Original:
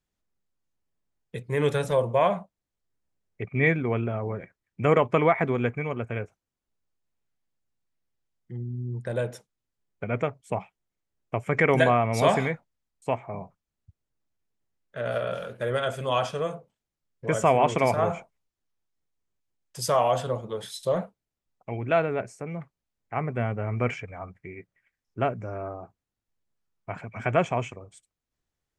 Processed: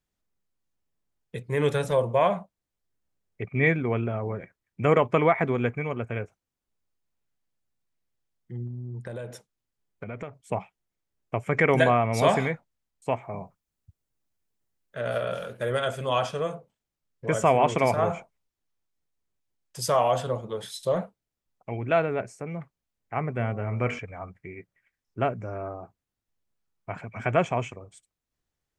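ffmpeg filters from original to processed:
-filter_complex "[0:a]asettb=1/sr,asplit=3[s0][s1][s2];[s0]atrim=end=8.674[s3];[s1]atrim=start=8.67:end=10.43,asetpts=PTS-STARTPTS,afade=t=in:d=0.004:c=qsin,afade=t=out:st=1.756:d=0.004:c=qsin,acompressor=threshold=0.0251:ratio=6:attack=3.2:release=140:knee=1:detection=peak[s4];[s2]atrim=start=10.426[s5];[s3][s4]acrossfade=d=0.004:c1=hsin:c2=qsin[s6];[s6][s5]acrossfade=d=0.004:c1=qsin:c2=hsin,asettb=1/sr,asplit=3[s7][s8][s9];[s7]atrim=end=13.164[s10];[s8]atrim=start=13.16:end=15.91,asetpts=PTS-STARTPTS,afade=t=in:d=0.004:c=qsin,afade=t=out:st=2.746:d=0.004:c=qsin,highshelf=f=6800:g=6.5[s11];[s9]atrim=start=15.906[s12];[s10][s11]acrossfade=d=0.004:c1=hsin:c2=qsin[s13];[s13][s12]acrossfade=d=0.004:c1=qsin:c2=hsin,asettb=1/sr,asplit=3[s14][s15][s16];[s14]atrim=end=23.374[s17];[s15]atrim=start=23.37:end=23.99,asetpts=PTS-STARTPTS,afade=t=in:d=0.004:c=qsin,afade=t=out:st=0.616:d=0.004:c=qsin,bandreject=f=48.29:t=h:w=4,bandreject=f=96.58:t=h:w=4,bandreject=f=144.87:t=h:w=4,bandreject=f=193.16:t=h:w=4,bandreject=f=241.45:t=h:w=4,bandreject=f=289.74:t=h:w=4,bandreject=f=338.03:t=h:w=4,bandreject=f=386.32:t=h:w=4,bandreject=f=434.61:t=h:w=4,bandreject=f=482.9:t=h:w=4,bandreject=f=531.19:t=h:w=4,bandreject=f=579.48:t=h:w=4,bandreject=f=627.77:t=h:w=4,bandreject=f=676.06:t=h:w=4,bandreject=f=724.35:t=h:w=4,bandreject=f=772.64:t=h:w=4,bandreject=f=820.93:t=h:w=4,bandreject=f=869.22:t=h:w=4,bandreject=f=917.51:t=h:w=4,bandreject=f=965.8:t=h:w=4,bandreject=f=1014.09:t=h:w=4,bandreject=f=1062.38:t=h:w=4,bandreject=f=1110.67:t=h:w=4,bandreject=f=1158.96:t=h:w=4,bandreject=f=1207.25:t=h:w=4,bandreject=f=1255.54:t=h:w=4,bandreject=f=1303.83:t=h:w=4,bandreject=f=1352.12:t=h:w=4,bandreject=f=1400.41:t=h:w=4[s18];[s16]atrim=start=23.986[s19];[s17][s18]acrossfade=d=0.004:c1=hsin:c2=qsin[s20];[s20][s19]acrossfade=d=0.004:c1=qsin:c2=hsin"

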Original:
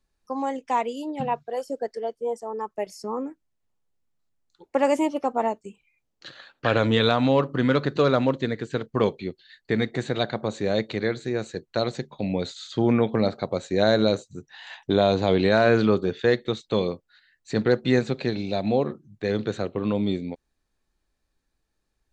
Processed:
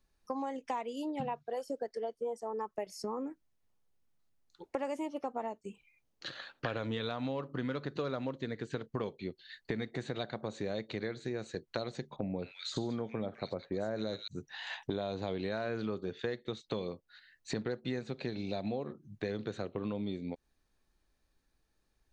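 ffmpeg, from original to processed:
-filter_complex "[0:a]asettb=1/sr,asplit=3[s0][s1][s2];[s0]atrim=end=12.164[s3];[s1]atrim=start=12.16:end=14.28,asetpts=PTS-STARTPTS,afade=t=in:d=0.004:c=qsin,afade=t=out:st=2.116:d=0.004:c=qsin,acrossover=split=2000[s4][s5];[s5]adelay=200[s6];[s4][s6]amix=inputs=2:normalize=0,atrim=end_sample=93492[s7];[s2]atrim=start=14.276[s8];[s3][s7]acrossfade=d=0.004:c1=hsin:c2=qsin[s9];[s9][s8]acrossfade=d=0.004:c1=qsin:c2=hsin,bandreject=f=7500:w=13,acompressor=threshold=0.02:ratio=6"

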